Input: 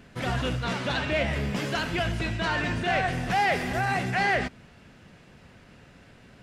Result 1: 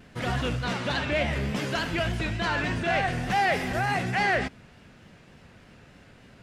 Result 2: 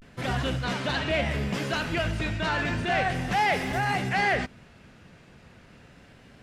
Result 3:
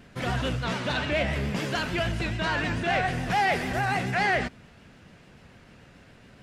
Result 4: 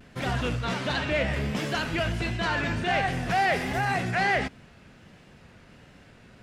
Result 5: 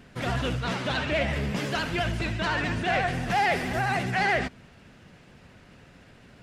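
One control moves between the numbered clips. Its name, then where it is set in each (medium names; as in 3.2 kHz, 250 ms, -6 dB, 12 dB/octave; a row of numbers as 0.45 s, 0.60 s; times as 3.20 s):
vibrato, rate: 3.4 Hz, 0.34 Hz, 6.9 Hz, 1.4 Hz, 14 Hz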